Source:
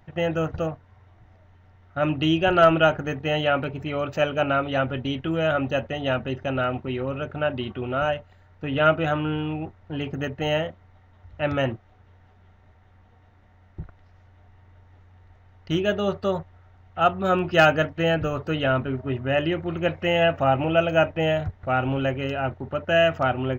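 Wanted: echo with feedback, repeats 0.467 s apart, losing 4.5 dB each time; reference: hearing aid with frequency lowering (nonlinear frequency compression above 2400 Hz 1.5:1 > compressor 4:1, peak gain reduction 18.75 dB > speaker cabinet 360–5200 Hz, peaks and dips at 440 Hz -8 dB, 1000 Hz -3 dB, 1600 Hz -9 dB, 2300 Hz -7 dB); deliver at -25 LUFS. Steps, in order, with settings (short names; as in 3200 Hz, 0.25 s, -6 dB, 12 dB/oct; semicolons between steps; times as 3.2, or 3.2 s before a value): feedback echo 0.467 s, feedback 60%, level -4.5 dB; nonlinear frequency compression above 2400 Hz 1.5:1; compressor 4:1, threshold -34 dBFS; speaker cabinet 360–5200 Hz, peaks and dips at 440 Hz -8 dB, 1000 Hz -3 dB, 1600 Hz -9 dB, 2300 Hz -7 dB; gain +15 dB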